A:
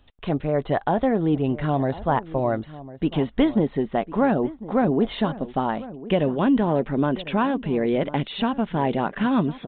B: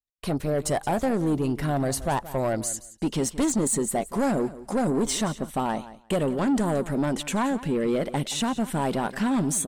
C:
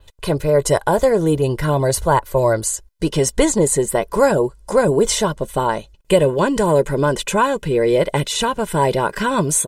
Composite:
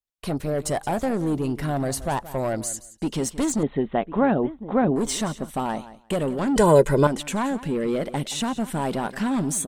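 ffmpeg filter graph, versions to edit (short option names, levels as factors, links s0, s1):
-filter_complex "[1:a]asplit=3[s0][s1][s2];[s0]atrim=end=3.632[s3];[0:a]atrim=start=3.628:end=4.962[s4];[s1]atrim=start=4.958:end=6.562[s5];[2:a]atrim=start=6.558:end=7.072[s6];[s2]atrim=start=7.068[s7];[s3][s4]acrossfade=d=0.004:c1=hsin:c2=hsin[s8];[s8][s5]acrossfade=d=0.004:c1=hsin:c2=hsin[s9];[s9][s6]acrossfade=d=0.004:c1=hsin:c2=hsin[s10];[s10][s7]acrossfade=d=0.004:c1=hsin:c2=hsin"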